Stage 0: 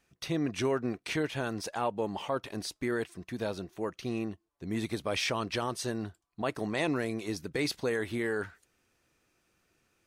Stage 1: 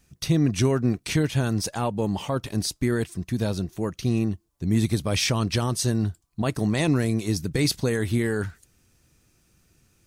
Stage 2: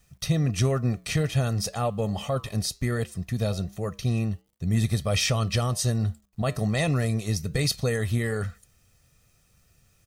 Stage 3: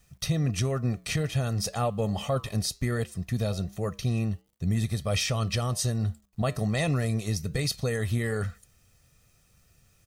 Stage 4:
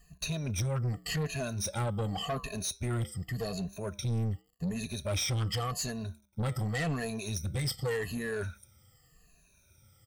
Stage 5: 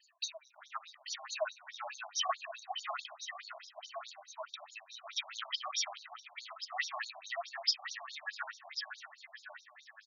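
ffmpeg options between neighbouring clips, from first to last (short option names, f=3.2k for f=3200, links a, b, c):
-af "bass=f=250:g=15,treble=f=4k:g=10,volume=2.5dB"
-af "aecho=1:1:1.6:0.65,acrusher=bits=10:mix=0:aa=0.000001,flanger=delay=6.7:depth=2.4:regen=-86:speed=1.3:shape=triangular,volume=2dB"
-af "alimiter=limit=-17dB:level=0:latency=1:release=355"
-af "afftfilt=real='re*pow(10,22/40*sin(2*PI*(1.5*log(max(b,1)*sr/1024/100)/log(2)-(-0.87)*(pts-256)/sr)))':imag='im*pow(10,22/40*sin(2*PI*(1.5*log(max(b,1)*sr/1024/100)/log(2)-(-0.87)*(pts-256)/sr)))':win_size=1024:overlap=0.75,asoftclip=type=tanh:threshold=-22dB,volume=-5.5dB"
-af "tremolo=f=1.3:d=0.73,aecho=1:1:549|1098|1647|2196|2745|3294|3843|4392:0.596|0.34|0.194|0.11|0.0629|0.0358|0.0204|0.0116,afftfilt=real='re*between(b*sr/1024,790*pow(5100/790,0.5+0.5*sin(2*PI*4.7*pts/sr))/1.41,790*pow(5100/790,0.5+0.5*sin(2*PI*4.7*pts/sr))*1.41)':imag='im*between(b*sr/1024,790*pow(5100/790,0.5+0.5*sin(2*PI*4.7*pts/sr))/1.41,790*pow(5100/790,0.5+0.5*sin(2*PI*4.7*pts/sr))*1.41)':win_size=1024:overlap=0.75,volume=7dB"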